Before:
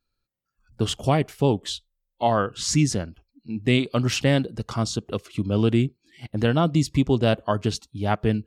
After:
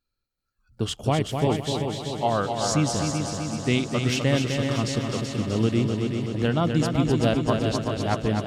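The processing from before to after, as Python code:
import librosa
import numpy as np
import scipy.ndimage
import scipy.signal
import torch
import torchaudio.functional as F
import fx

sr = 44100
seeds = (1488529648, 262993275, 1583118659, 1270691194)

y = fx.echo_heads(x, sr, ms=127, heads='second and third', feedback_pct=66, wet_db=-6.0)
y = F.gain(torch.from_numpy(y), -3.0).numpy()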